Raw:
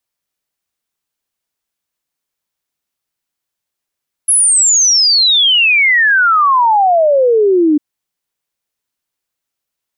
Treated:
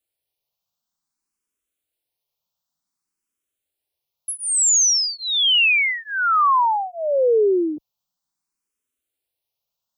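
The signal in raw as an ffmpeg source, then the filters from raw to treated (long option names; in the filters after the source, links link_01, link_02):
-f lavfi -i "aevalsrc='0.447*clip(min(t,3.5-t)/0.01,0,1)*sin(2*PI*11000*3.5/log(290/11000)*(exp(log(290/11000)*t/3.5)-1))':duration=3.5:sample_rate=44100"
-filter_complex "[0:a]equalizer=frequency=1800:width_type=o:width=0.67:gain=-7.5,alimiter=limit=-12.5dB:level=0:latency=1:release=20,asplit=2[link_01][link_02];[link_02]afreqshift=0.55[link_03];[link_01][link_03]amix=inputs=2:normalize=1"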